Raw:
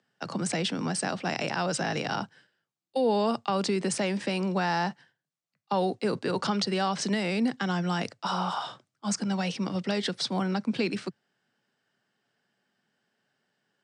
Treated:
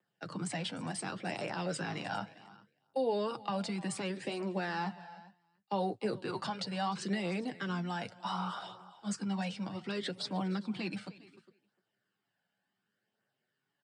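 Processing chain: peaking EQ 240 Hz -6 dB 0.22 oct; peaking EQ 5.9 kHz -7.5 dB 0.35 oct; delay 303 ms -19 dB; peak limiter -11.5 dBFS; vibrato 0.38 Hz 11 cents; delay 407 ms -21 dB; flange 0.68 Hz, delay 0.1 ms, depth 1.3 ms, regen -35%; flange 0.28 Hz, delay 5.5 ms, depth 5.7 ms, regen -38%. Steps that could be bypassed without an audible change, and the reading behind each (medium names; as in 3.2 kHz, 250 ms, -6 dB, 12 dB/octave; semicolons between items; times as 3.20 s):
peak limiter -11.5 dBFS: peak at its input -14.0 dBFS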